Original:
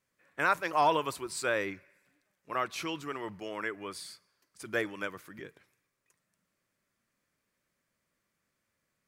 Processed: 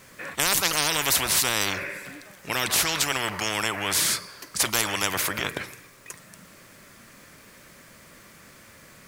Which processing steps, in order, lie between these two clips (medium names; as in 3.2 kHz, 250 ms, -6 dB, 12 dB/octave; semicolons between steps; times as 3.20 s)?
spectrum-flattening compressor 10:1; trim +9 dB